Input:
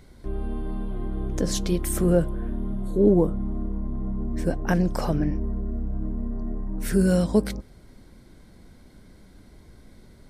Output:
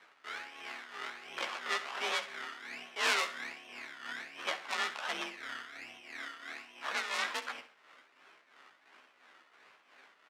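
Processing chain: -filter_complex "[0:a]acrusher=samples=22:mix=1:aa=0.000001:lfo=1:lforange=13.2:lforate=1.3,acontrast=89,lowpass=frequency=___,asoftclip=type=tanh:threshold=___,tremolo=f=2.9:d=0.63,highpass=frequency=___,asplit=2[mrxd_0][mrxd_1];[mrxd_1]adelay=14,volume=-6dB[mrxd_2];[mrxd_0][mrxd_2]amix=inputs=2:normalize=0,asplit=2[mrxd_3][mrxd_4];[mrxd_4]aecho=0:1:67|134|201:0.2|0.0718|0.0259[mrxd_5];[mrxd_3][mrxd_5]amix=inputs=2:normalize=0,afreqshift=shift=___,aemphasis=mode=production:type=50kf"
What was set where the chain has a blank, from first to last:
2100, -16dB, 1300, 45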